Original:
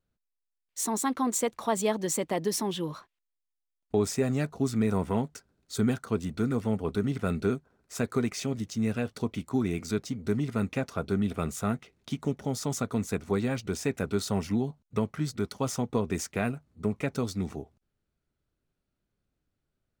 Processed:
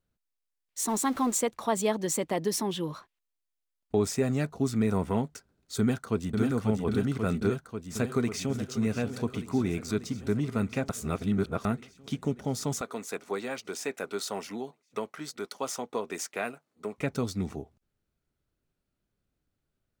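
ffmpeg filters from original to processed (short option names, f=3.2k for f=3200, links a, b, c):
-filter_complex "[0:a]asettb=1/sr,asplit=3[a][b][c];[a]atrim=end=0.884[d];[b]atrim=start=0.88:end=1.41,asetpts=PTS-STARTPTS,afade=t=in:d=0.004:c=qsin,afade=t=out:st=0.526:d=0.004:c=qsin,aeval=exprs='val(0)+0.5*0.0106*sgn(val(0))':c=same[e];[c]atrim=start=1.406[f];[d][e]acrossfade=d=0.004:c1=hsin:c2=qsin[g];[g][f]acrossfade=d=0.004:c1=qsin:c2=hsin,asplit=2[h][i];[i]afade=t=in:st=5.79:d=0.01,afade=t=out:st=6.4:d=0.01,aecho=0:1:540|1080|1620|2160|2700|3240|3780|4320|4860|5400|5940|6480:0.668344|0.501258|0.375943|0.281958|0.211468|0.158601|0.118951|0.0892131|0.0669099|0.0501824|0.0376368|0.0282276[j];[h][j]amix=inputs=2:normalize=0,asplit=2[k][l];[l]afade=t=in:st=7.5:d=0.01,afade=t=out:st=8.55:d=0.01,aecho=0:1:590|1180|1770|2360|2950|3540|4130|4720|5310|5900|6490:0.223872|0.167904|0.125928|0.094446|0.0708345|0.0531259|0.0398444|0.0298833|0.0224125|0.0168094|0.012607[m];[k][m]amix=inputs=2:normalize=0,asettb=1/sr,asplit=3[n][o][p];[n]atrim=end=12.814[q];[o]atrim=start=12.81:end=16.98,asetpts=PTS-STARTPTS,afade=t=in:d=0.004:c=qsin,afade=t=out:st=4.166:d=0.004:c=qsin,highpass=430[r];[p]atrim=start=16.976[s];[q][r]acrossfade=d=0.004:c1=hsin:c2=qsin[t];[t][s]acrossfade=d=0.004:c1=qsin:c2=hsin,asplit=3[u][v][w];[u]atrim=end=10.892[x];[v]atrim=start=10.888:end=11.652,asetpts=PTS-STARTPTS,areverse[y];[w]atrim=start=11.648[z];[x][y]acrossfade=d=0.004:c1=hsin:c2=hsin[aa];[aa][z]acrossfade=d=0.004:c1=hsin:c2=hsin"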